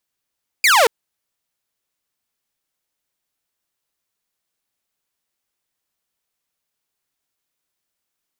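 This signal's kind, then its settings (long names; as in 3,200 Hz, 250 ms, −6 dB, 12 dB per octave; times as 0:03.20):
single falling chirp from 2,500 Hz, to 420 Hz, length 0.23 s saw, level −7.5 dB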